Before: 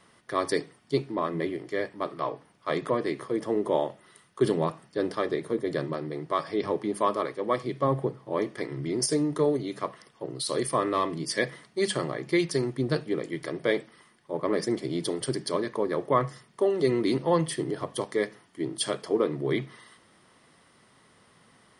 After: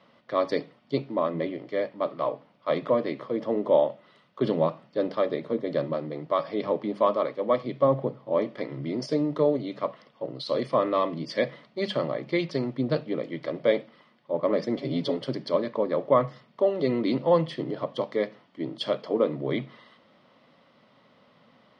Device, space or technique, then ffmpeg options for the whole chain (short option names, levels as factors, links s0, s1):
guitar cabinet: -filter_complex "[0:a]highpass=86,equalizer=f=91:t=q:w=4:g=-9,equalizer=f=240:t=q:w=4:g=5,equalizer=f=380:t=q:w=4:g=-6,equalizer=f=570:t=q:w=4:g=9,equalizer=f=1700:t=q:w=4:g=-6,lowpass=f=4300:w=0.5412,lowpass=f=4300:w=1.3066,asettb=1/sr,asplit=3[s0][s1][s2];[s0]atrim=end=14.764[s3];[s1]atrim=start=14.76:end=15.17,asetpts=PTS-STARTPTS,afade=t=in:d=0.004:c=qsin,afade=t=out:st=0.406:d=0.004:c=qsin,aecho=1:1:7.3:0.84,atrim=end_sample=18081[s4];[s2]atrim=start=15.166[s5];[s3][s4]acrossfade=d=0.004:c1=hsin:c2=qsin[s6];[s6][s5]acrossfade=d=0.004:c1=qsin:c2=hsin"